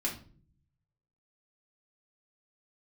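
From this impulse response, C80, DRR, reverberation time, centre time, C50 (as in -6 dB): 14.5 dB, -3.5 dB, 0.45 s, 20 ms, 9.0 dB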